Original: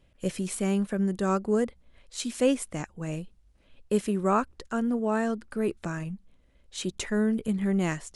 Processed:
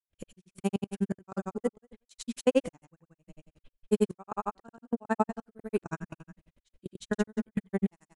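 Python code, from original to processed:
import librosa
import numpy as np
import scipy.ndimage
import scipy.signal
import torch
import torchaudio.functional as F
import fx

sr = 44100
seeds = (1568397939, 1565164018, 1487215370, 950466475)

y = fx.dynamic_eq(x, sr, hz=850.0, q=2.8, threshold_db=-45.0, ratio=4.0, max_db=7)
y = fx.echo_feedback(y, sr, ms=147, feedback_pct=31, wet_db=-10)
y = fx.step_gate(y, sr, bpm=179, pattern='.xx.x..xx.x.x.x', floor_db=-24.0, edge_ms=4.5)
y = fx.granulator(y, sr, seeds[0], grain_ms=58.0, per_s=11.0, spray_ms=100.0, spread_st=0)
y = F.gain(torch.from_numpy(y), 1.5).numpy()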